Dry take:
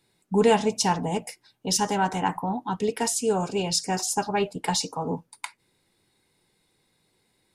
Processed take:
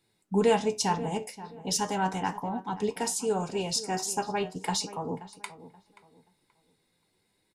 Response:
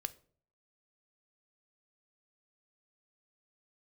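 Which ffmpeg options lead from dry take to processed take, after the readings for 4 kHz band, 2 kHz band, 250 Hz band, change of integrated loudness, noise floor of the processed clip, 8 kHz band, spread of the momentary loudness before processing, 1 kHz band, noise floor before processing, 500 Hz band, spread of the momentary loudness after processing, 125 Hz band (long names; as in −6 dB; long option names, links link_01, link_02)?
−4.5 dB, −4.5 dB, −4.5 dB, −4.0 dB, −74 dBFS, −4.5 dB, 12 LU, −4.0 dB, −71 dBFS, −3.5 dB, 12 LU, −4.5 dB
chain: -filter_complex "[0:a]flanger=delay=8.6:depth=5.3:regen=72:speed=0.39:shape=triangular,asplit=2[link_01][link_02];[link_02]adelay=529,lowpass=frequency=1900:poles=1,volume=-15dB,asplit=2[link_03][link_04];[link_04]adelay=529,lowpass=frequency=1900:poles=1,volume=0.29,asplit=2[link_05][link_06];[link_06]adelay=529,lowpass=frequency=1900:poles=1,volume=0.29[link_07];[link_01][link_03][link_05][link_07]amix=inputs=4:normalize=0"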